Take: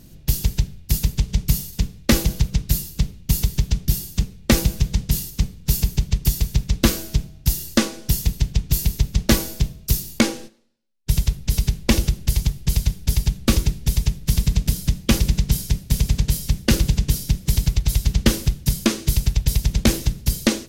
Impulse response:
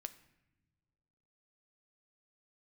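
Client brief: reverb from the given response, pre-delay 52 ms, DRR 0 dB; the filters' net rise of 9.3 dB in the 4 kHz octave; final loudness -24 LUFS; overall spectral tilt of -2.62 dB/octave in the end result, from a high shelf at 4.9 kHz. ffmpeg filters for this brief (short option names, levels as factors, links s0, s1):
-filter_complex "[0:a]equalizer=f=4000:t=o:g=7,highshelf=f=4900:g=9,asplit=2[s0][s1];[1:a]atrim=start_sample=2205,adelay=52[s2];[s1][s2]afir=irnorm=-1:irlink=0,volume=1.58[s3];[s0][s3]amix=inputs=2:normalize=0,volume=0.355"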